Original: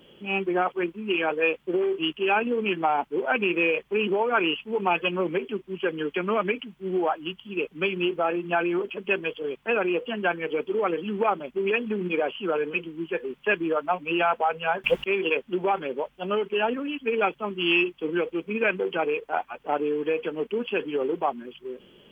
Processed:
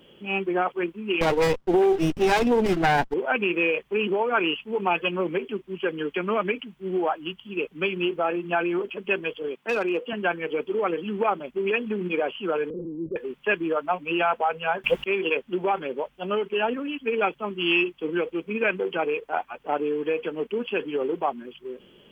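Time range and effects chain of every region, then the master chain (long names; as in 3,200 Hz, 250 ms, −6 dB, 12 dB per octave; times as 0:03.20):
0:01.21–0:03.14: leveller curve on the samples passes 2 + windowed peak hold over 17 samples
0:09.48–0:10.13: Chebyshev high-pass filter 220 Hz + gain into a clipping stage and back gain 18.5 dB
0:12.70–0:13.16: converter with a step at zero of −36 dBFS + Butterworth low-pass 560 Hz 96 dB per octave + transient designer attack −3 dB, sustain +5 dB
whole clip: no processing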